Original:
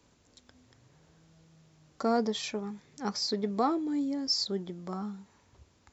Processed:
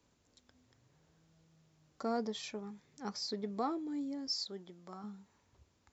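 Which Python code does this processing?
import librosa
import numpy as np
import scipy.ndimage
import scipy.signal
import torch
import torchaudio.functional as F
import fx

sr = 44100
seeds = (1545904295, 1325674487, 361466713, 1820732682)

y = fx.low_shelf(x, sr, hz=380.0, db=-8.5, at=(4.33, 5.04))
y = y * 10.0 ** (-8.0 / 20.0)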